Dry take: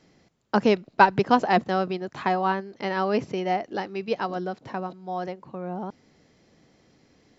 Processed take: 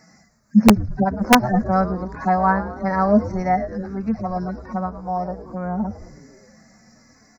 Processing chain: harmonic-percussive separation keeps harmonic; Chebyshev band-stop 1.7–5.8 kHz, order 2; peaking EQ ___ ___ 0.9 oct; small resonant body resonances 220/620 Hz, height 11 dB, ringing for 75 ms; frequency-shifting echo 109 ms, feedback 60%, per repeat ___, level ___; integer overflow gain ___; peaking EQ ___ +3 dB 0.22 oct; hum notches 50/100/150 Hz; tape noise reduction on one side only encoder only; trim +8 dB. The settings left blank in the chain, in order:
360 Hz, -11.5 dB, -120 Hz, -13.5 dB, 10.5 dB, 2.2 kHz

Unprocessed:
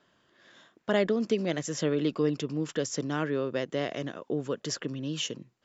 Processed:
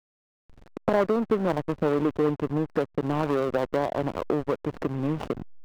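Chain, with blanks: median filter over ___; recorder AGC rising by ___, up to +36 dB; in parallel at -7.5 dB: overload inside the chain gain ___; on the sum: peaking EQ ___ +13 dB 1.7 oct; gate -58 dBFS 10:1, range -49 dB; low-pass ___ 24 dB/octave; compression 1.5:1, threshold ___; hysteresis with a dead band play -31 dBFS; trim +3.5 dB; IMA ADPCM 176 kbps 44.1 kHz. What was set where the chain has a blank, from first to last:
41 samples, 20 dB/s, 24.5 dB, 1 kHz, 2.7 kHz, -32 dBFS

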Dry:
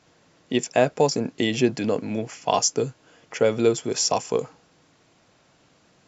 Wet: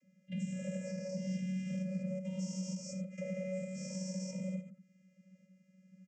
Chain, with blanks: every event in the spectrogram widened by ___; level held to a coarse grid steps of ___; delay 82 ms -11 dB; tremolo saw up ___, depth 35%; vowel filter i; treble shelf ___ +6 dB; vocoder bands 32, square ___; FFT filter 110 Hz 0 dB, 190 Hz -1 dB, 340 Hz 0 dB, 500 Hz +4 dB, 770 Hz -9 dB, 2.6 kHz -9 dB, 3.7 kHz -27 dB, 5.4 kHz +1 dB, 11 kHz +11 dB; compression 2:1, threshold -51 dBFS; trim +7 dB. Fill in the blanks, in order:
480 ms, 20 dB, 1.1 Hz, 6.1 kHz, 187 Hz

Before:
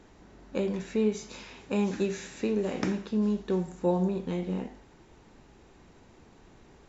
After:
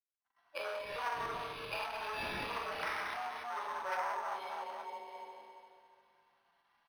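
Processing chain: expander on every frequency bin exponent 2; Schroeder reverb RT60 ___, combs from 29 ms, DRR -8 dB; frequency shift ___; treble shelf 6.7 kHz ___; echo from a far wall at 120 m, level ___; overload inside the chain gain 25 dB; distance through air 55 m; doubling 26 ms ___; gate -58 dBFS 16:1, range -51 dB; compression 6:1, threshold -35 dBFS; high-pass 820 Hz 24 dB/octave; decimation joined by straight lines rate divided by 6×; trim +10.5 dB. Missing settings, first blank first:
2.3 s, +31 Hz, +6.5 dB, -15 dB, -8 dB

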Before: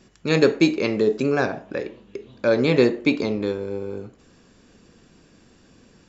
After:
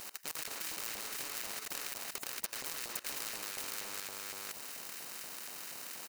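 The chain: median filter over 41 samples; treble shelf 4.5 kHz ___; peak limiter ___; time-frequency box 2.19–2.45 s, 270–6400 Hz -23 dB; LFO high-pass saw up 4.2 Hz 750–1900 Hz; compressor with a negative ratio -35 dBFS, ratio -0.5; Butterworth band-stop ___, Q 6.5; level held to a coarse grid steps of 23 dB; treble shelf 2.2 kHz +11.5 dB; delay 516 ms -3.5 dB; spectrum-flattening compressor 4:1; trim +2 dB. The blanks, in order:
+10.5 dB, -12.5 dBFS, 3.4 kHz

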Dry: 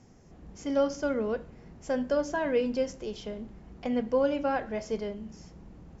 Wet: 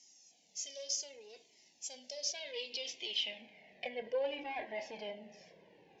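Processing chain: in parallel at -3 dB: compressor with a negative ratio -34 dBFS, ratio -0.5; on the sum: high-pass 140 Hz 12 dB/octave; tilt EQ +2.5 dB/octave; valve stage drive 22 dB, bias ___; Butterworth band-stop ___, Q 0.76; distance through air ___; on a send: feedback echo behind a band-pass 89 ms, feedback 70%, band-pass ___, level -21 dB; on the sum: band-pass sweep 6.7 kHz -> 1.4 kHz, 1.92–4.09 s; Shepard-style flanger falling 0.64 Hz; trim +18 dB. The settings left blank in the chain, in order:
0.8, 1.3 kHz, 170 m, 610 Hz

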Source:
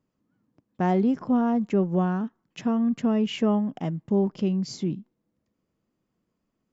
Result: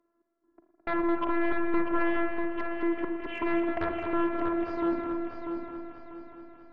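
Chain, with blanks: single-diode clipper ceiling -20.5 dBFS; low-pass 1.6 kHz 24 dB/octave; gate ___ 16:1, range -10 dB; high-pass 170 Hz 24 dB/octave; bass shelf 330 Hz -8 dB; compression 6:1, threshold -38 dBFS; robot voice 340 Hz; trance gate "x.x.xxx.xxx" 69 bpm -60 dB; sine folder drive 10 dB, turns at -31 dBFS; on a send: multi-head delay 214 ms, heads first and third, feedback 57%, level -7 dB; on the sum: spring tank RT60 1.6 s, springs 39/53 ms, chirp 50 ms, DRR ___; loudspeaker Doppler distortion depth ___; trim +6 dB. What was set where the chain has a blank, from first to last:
-49 dBFS, 5.5 dB, 0.11 ms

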